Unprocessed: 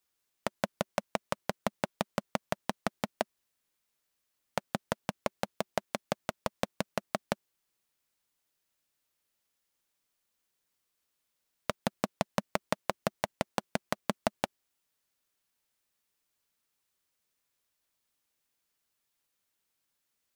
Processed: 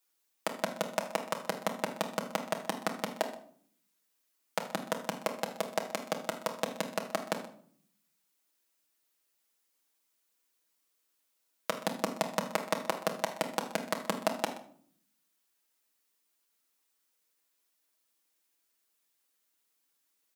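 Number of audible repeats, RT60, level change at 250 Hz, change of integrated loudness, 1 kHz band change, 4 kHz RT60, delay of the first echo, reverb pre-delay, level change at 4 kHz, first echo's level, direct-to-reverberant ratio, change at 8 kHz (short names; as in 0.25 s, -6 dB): 1, 0.55 s, -1.0 dB, +1.0 dB, +1.0 dB, 0.40 s, 0.126 s, 6 ms, +2.0 dB, -18.0 dB, 1.0 dB, +3.5 dB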